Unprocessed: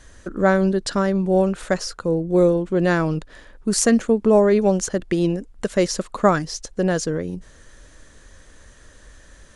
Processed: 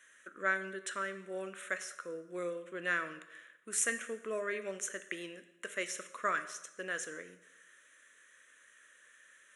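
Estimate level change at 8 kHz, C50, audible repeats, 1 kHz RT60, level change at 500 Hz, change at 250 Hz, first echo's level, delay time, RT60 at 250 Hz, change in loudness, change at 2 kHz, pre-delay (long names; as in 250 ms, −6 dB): −10.5 dB, 12.5 dB, no echo audible, 0.90 s, −21.5 dB, −28.0 dB, no echo audible, no echo audible, 0.95 s, −17.5 dB, −6.0 dB, 6 ms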